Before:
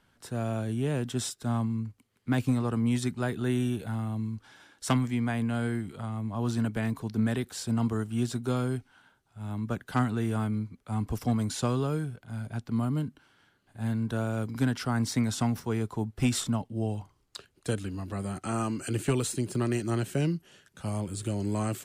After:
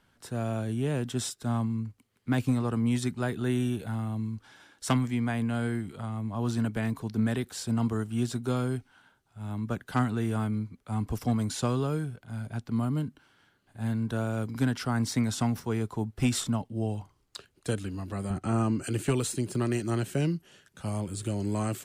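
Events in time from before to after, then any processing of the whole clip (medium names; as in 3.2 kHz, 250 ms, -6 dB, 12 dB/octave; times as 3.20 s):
18.30–18.84 s: tilt EQ -2 dB/octave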